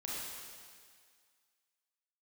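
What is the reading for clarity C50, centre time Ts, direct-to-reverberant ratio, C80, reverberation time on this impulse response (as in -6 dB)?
-3.0 dB, 0.135 s, -6.5 dB, -1.0 dB, 1.9 s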